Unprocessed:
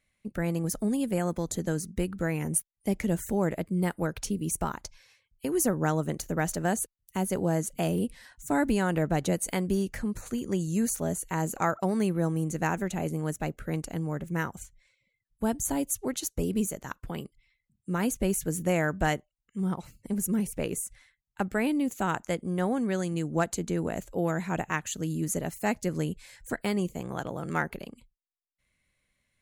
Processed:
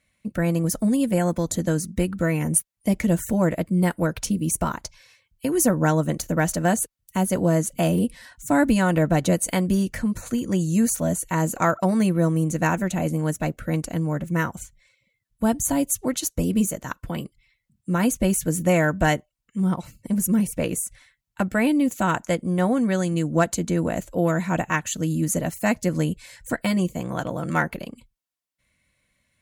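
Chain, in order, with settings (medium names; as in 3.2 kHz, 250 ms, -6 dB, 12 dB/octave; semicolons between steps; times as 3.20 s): Chebyshev shaper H 3 -33 dB, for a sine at -12.5 dBFS; comb of notches 410 Hz; trim +8 dB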